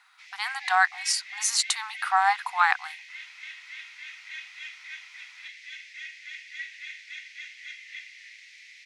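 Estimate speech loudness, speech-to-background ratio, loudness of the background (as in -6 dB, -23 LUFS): -25.0 LUFS, 15.0 dB, -40.0 LUFS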